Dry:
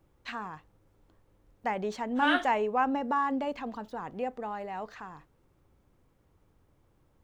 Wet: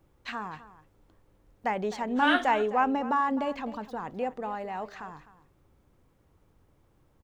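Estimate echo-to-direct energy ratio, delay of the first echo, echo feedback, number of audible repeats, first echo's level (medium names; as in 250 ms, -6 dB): -16.0 dB, 256 ms, no regular repeats, 1, -16.0 dB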